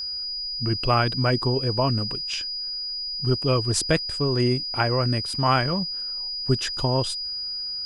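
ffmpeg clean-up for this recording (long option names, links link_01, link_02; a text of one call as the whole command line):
ffmpeg -i in.wav -af "bandreject=frequency=4900:width=30" out.wav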